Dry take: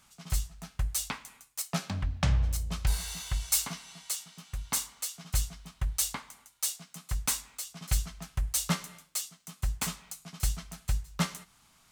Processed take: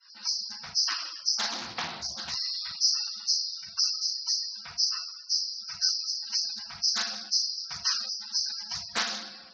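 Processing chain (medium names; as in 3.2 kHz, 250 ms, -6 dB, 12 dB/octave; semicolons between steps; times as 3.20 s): knee-point frequency compression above 3.2 kHz 4:1; gate with hold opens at -52 dBFS; gain riding within 5 dB 0.5 s; high-pass 420 Hz 12 dB/octave; tape speed +25%; reverberation RT60 1.6 s, pre-delay 4 ms, DRR -9 dB; harmonic-percussive split harmonic -6 dB; hum notches 60/120/180/240/300/360/420/480/540/600 Hz; spectral gate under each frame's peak -15 dB strong; loudspeaker Doppler distortion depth 0.41 ms; trim -2.5 dB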